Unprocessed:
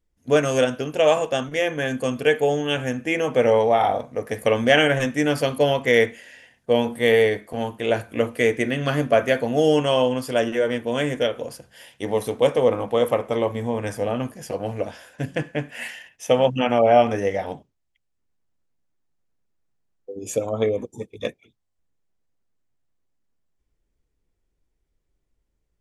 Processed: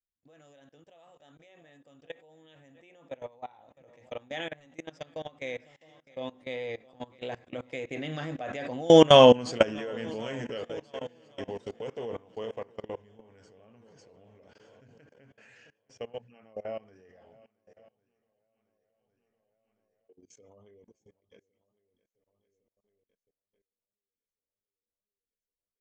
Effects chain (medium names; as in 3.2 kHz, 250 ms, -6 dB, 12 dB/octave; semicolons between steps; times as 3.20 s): Doppler pass-by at 9.26 s, 27 m/s, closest 6.8 m; steep low-pass 7.3 kHz 48 dB/octave; treble shelf 4.4 kHz +2.5 dB; shuffle delay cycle 1107 ms, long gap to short 1.5:1, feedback 41%, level -19.5 dB; level held to a coarse grid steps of 22 dB; trim +9 dB